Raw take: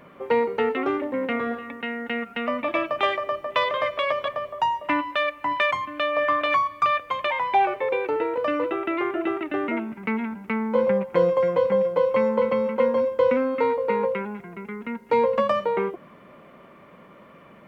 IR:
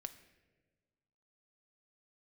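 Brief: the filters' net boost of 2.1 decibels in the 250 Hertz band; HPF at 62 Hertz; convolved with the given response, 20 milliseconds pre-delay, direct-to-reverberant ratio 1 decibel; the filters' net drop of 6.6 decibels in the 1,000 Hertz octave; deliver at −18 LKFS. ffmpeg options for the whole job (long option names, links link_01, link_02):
-filter_complex "[0:a]highpass=62,equalizer=frequency=250:width_type=o:gain=3,equalizer=frequency=1000:width_type=o:gain=-8,asplit=2[link_01][link_02];[1:a]atrim=start_sample=2205,adelay=20[link_03];[link_02][link_03]afir=irnorm=-1:irlink=0,volume=3dB[link_04];[link_01][link_04]amix=inputs=2:normalize=0,volume=6.5dB"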